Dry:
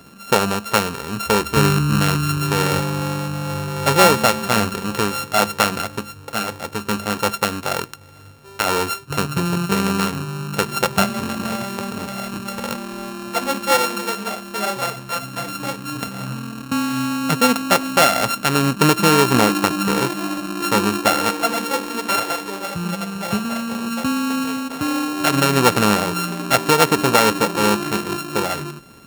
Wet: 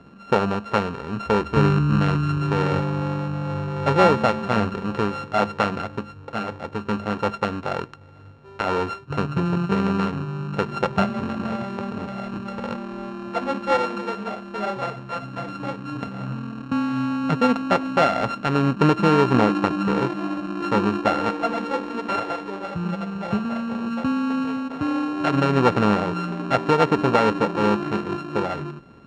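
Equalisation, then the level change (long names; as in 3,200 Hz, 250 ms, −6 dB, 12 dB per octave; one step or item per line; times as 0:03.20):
high-frequency loss of the air 130 metres
high-shelf EQ 2,400 Hz −10.5 dB
−1.0 dB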